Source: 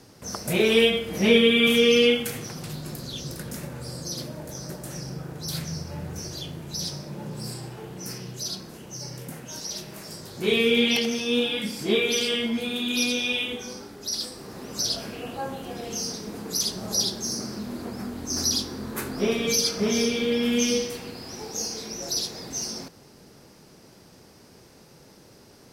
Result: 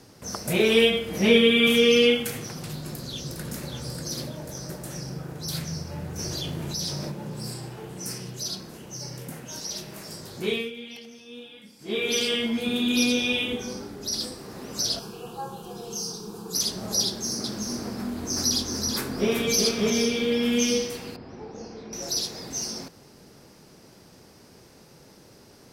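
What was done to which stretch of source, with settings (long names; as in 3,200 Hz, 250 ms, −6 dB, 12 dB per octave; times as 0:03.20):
0:02.78–0:03.70: delay throw 590 ms, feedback 30%, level −5.5 dB
0:06.19–0:07.12: envelope flattener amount 70%
0:07.89–0:08.30: parametric band 8,600 Hz +8.5 dB 0.6 octaves
0:10.35–0:12.16: duck −19 dB, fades 0.37 s
0:12.66–0:14.35: low-shelf EQ 470 Hz +6.5 dB
0:14.99–0:16.55: phaser with its sweep stopped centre 400 Hz, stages 8
0:17.06–0:19.90: single-tap delay 379 ms −4.5 dB
0:21.16–0:21.93: head-to-tape spacing loss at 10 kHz 38 dB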